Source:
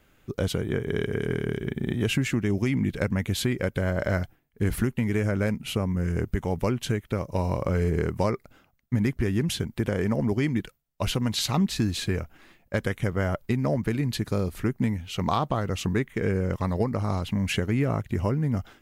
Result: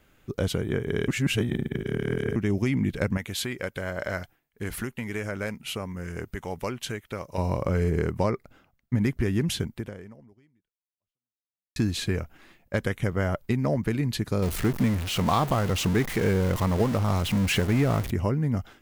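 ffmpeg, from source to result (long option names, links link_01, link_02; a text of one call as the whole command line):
ffmpeg -i in.wav -filter_complex "[0:a]asettb=1/sr,asplit=3[link_01][link_02][link_03];[link_01]atrim=end=3.174[link_04];[link_02]atrim=start=3.17:end=7.38,asetpts=PTS-STARTPTS,afade=type=in:duration=0.004:curve=qsin,afade=type=out:start_time=4.206:duration=0.004:curve=qsin,lowshelf=frequency=440:gain=-10.5[link_05];[link_03]atrim=start=7.376[link_06];[link_04][link_05]acrossfade=duration=0.004:curve1=hsin:curve2=qsin[link_07];[link_07][link_06]acrossfade=duration=0.004:curve1=qsin:curve2=hsin,asettb=1/sr,asplit=3[link_08][link_09][link_10];[link_08]atrim=end=8.114[link_11];[link_09]atrim=start=8.11:end=9.01,asetpts=PTS-STARTPTS,afade=type=in:duration=0.004:curve=qsin,afade=type=out:start_time=0.896:duration=0.004:curve=qsin,highshelf=frequency=4400:gain=-5[link_12];[link_10]atrim=start=9.006[link_13];[link_11][link_12]acrossfade=duration=0.004:curve1=hsin:curve2=qsin[link_14];[link_14][link_13]acrossfade=duration=0.004:curve1=qsin:curve2=hsin,asettb=1/sr,asplit=3[link_15][link_16][link_17];[link_15]atrim=end=14.424[link_18];[link_16]atrim=start=14.42:end=18.11,asetpts=PTS-STARTPTS,afade=type=in:duration=0.004:curve=qsin,afade=type=out:start_time=3.686:duration=0.004:curve=qsin,aeval=exprs='val(0)+0.5*0.0398*sgn(val(0))':channel_layout=same[link_19];[link_17]atrim=start=18.106[link_20];[link_18][link_19]acrossfade=duration=0.004:curve1=hsin:curve2=qsin[link_21];[link_21][link_20]acrossfade=duration=0.004:curve1=qsin:curve2=hsin,asplit=4[link_22][link_23][link_24][link_25];[link_22]atrim=end=1.082[link_26];[link_23]atrim=start=1.078:end=2.362,asetpts=PTS-STARTPTS,areverse[link_27];[link_24]atrim=start=2.358:end=11.76,asetpts=PTS-STARTPTS,afade=type=out:start_time=7.302:duration=2.1:curve=exp[link_28];[link_25]atrim=start=11.76,asetpts=PTS-STARTPTS,afade=type=in:duration=0.004:curve=hsin[link_29];[link_26][link_27]acrossfade=duration=0.004:curve1=hsin:curve2=hsin[link_30];[link_28][link_29]concat=n=2:v=0:a=1[link_31];[link_30][link_31]acrossfade=duration=0.004:curve1=hsin:curve2=hsin" out.wav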